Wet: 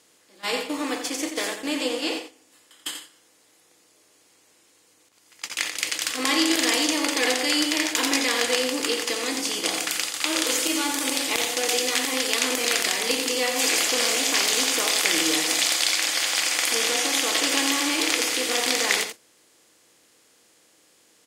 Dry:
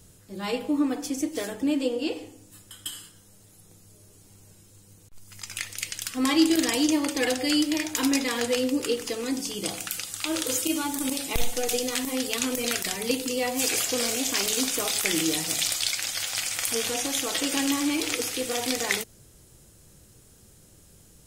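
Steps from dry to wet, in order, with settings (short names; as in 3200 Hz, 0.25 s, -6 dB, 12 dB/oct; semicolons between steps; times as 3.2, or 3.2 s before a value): per-bin compression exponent 0.6; weighting filter A; gate -29 dBFS, range -18 dB; on a send: echo 87 ms -8 dB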